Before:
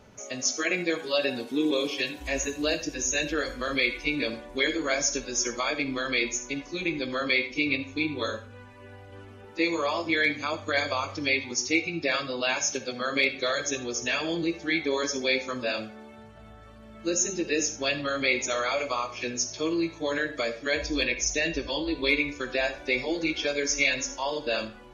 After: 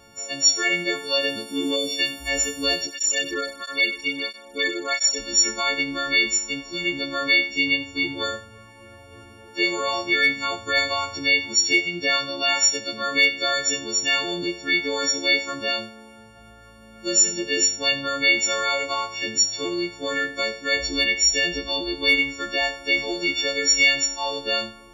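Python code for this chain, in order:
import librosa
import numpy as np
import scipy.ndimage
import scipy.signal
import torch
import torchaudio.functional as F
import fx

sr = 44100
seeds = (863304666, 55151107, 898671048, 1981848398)

y = fx.freq_snap(x, sr, grid_st=4)
y = fx.spec_box(y, sr, start_s=1.76, length_s=0.23, low_hz=820.0, high_hz=3500.0, gain_db=-12)
y = fx.flanger_cancel(y, sr, hz=1.5, depth_ms=1.5, at=(2.86, 5.18), fade=0.02)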